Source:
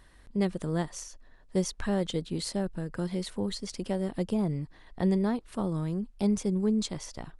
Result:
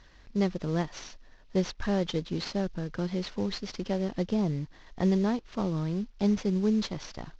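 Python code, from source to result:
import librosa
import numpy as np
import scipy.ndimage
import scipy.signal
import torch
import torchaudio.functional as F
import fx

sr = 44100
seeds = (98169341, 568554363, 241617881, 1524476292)

y = fx.cvsd(x, sr, bps=32000)
y = y * librosa.db_to_amplitude(1.0)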